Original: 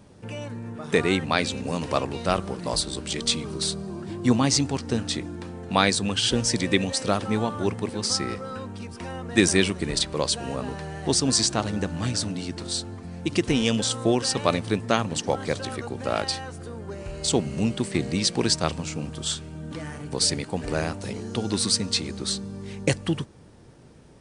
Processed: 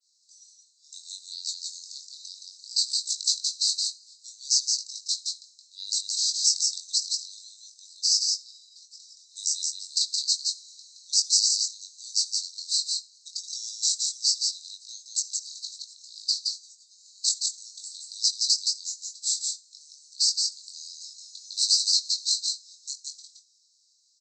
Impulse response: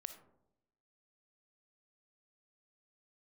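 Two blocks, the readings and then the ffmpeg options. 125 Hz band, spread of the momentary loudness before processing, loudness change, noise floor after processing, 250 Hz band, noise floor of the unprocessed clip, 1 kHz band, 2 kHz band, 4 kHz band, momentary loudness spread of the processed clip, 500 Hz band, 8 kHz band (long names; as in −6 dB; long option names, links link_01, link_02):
below −40 dB, 14 LU, 0.0 dB, −63 dBFS, below −40 dB, −43 dBFS, below −40 dB, below −40 dB, +2.5 dB, 18 LU, below −40 dB, +3.5 dB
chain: -filter_complex "[0:a]adynamicequalizer=threshold=0.0126:dfrequency=6000:dqfactor=0.85:tfrequency=6000:tqfactor=0.85:attack=5:release=100:ratio=0.375:range=2.5:mode=boostabove:tftype=bell,alimiter=limit=-10.5dB:level=0:latency=1:release=279,asuperpass=centerf=5700:order=20:qfactor=1.4,asplit=2[link_01][link_02];[link_02]adelay=21,volume=-5dB[link_03];[link_01][link_03]amix=inputs=2:normalize=0,aecho=1:1:170:0.668,asplit=2[link_04][link_05];[1:a]atrim=start_sample=2205[link_06];[link_05][link_06]afir=irnorm=-1:irlink=0,volume=-1.5dB[link_07];[link_04][link_07]amix=inputs=2:normalize=0,volume=-3dB"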